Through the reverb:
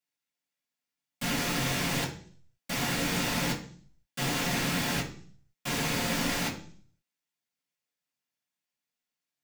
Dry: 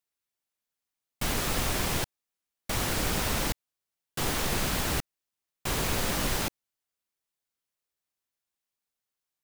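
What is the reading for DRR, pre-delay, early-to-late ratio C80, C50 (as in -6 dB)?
-7.0 dB, 3 ms, 14.0 dB, 9.5 dB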